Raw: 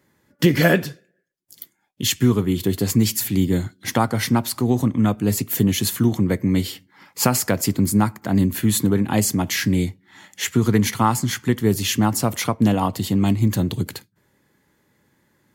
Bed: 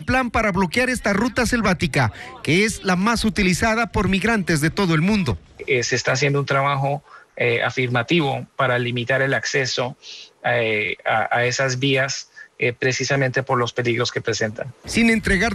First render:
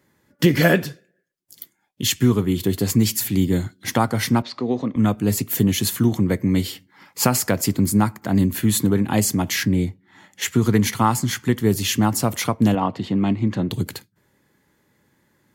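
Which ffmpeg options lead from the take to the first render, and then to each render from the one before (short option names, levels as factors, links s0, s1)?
-filter_complex "[0:a]asettb=1/sr,asplit=3[s0][s1][s2];[s0]atrim=end=4.424[s3];[s1]atrim=start=4.42:end=4.96,asetpts=PTS-STARTPTS,afade=t=in:d=0.004:c=qsin,afade=t=out:st=0.536:d=0.004:c=qsin,highpass=240,equalizer=f=330:t=q:w=4:g=-4,equalizer=f=500:t=q:w=4:g=4,equalizer=f=860:t=q:w=4:g=-5,equalizer=f=1500:t=q:w=4:g=-5,equalizer=f=3000:t=q:w=4:g=-4,lowpass=f=4400:w=0.5412,lowpass=f=4400:w=1.3066[s4];[s2]atrim=start=4.956[s5];[s3][s4]acrossfade=d=0.004:c1=hsin:c2=qsin[s6];[s6][s5]acrossfade=d=0.004:c1=qsin:c2=hsin,asettb=1/sr,asplit=3[s7][s8][s9];[s7]atrim=end=9.634[s10];[s8]atrim=start=9.63:end=10.42,asetpts=PTS-STARTPTS,afade=t=in:d=0.004:c=qsin,afade=t=out:st=0.786:d=0.004:c=qsin,highshelf=f=2200:g=-8.5[s11];[s9]atrim=start=10.416[s12];[s10][s11]acrossfade=d=0.004:c1=hsin:c2=qsin[s13];[s13][s12]acrossfade=d=0.004:c1=qsin:c2=hsin,asettb=1/sr,asplit=3[s14][s15][s16];[s14]atrim=end=12.754[s17];[s15]atrim=start=12.75:end=13.71,asetpts=PTS-STARTPTS,afade=t=in:d=0.004:c=qsin,afade=t=out:st=0.956:d=0.004:c=qsin,highpass=140,lowpass=2900[s18];[s16]atrim=start=13.706[s19];[s17][s18]acrossfade=d=0.004:c1=hsin:c2=qsin[s20];[s20][s19]acrossfade=d=0.004:c1=qsin:c2=hsin"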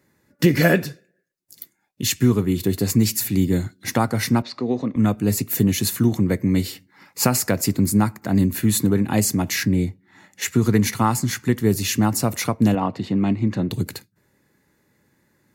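-af "equalizer=f=990:w=1.5:g=-2.5,bandreject=f=3200:w=6.5"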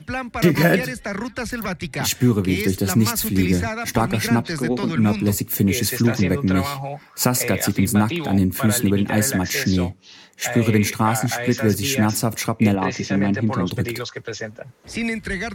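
-filter_complex "[1:a]volume=0.398[s0];[0:a][s0]amix=inputs=2:normalize=0"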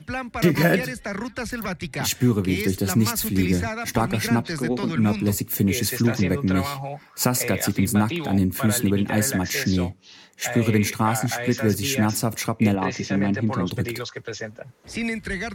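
-af "volume=0.75"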